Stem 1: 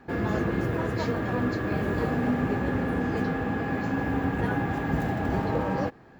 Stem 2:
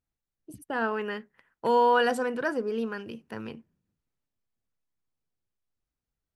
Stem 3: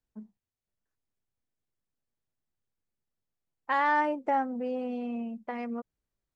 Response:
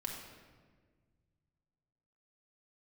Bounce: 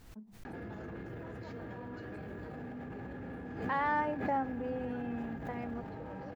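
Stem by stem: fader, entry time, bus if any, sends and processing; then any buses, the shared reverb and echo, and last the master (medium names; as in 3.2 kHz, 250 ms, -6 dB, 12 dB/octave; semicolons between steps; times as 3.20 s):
+2.5 dB, 0.45 s, bus A, no send, band-stop 1.1 kHz, Q 6.7; peak limiter -23 dBFS, peak gain reduction 9.5 dB
-16.0 dB, 0.00 s, bus A, no send, none
-5.5 dB, 0.00 s, no bus, no send, none
bus A: 0.0 dB, compressor with a negative ratio -39 dBFS, ratio -1; peak limiter -36.5 dBFS, peak gain reduction 9.5 dB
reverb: none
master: treble shelf 3.8 kHz -6.5 dB; swell ahead of each attack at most 70 dB/s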